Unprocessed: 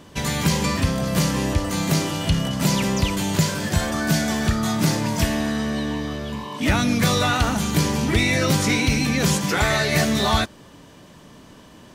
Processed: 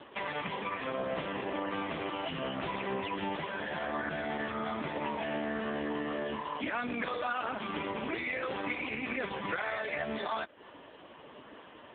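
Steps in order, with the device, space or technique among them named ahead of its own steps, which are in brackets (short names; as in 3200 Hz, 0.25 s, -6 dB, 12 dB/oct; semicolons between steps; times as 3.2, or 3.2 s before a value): 3.9–5.65 dynamic EQ 4900 Hz, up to +6 dB, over -47 dBFS, Q 6.9; 6.36–7.28 LPF 6500 Hz 12 dB/oct; voicemail (BPF 400–3200 Hz; compressor 6:1, threshold -33 dBFS, peak gain reduction 13.5 dB; gain +4 dB; AMR-NB 4.75 kbps 8000 Hz)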